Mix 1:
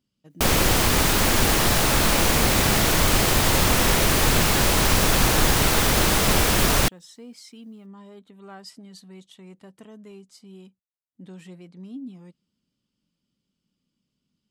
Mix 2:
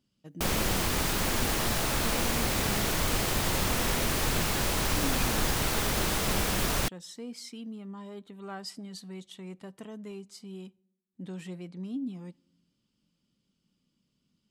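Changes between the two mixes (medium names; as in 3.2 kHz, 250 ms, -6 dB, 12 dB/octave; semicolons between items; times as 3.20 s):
background -9.0 dB; reverb: on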